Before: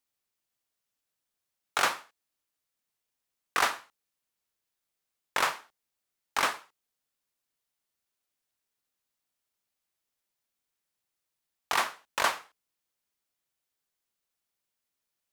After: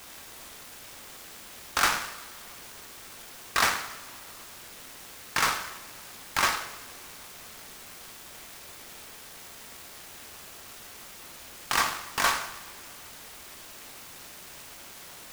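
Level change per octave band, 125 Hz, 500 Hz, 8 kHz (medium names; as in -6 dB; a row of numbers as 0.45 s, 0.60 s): +11.0 dB, 0.0 dB, +7.0 dB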